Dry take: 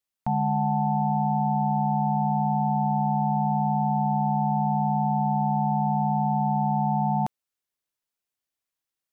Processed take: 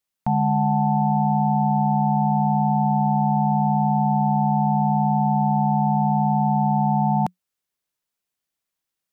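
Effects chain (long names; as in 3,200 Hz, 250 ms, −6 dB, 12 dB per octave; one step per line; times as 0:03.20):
parametric band 180 Hz +7 dB 0.23 octaves
level +3.5 dB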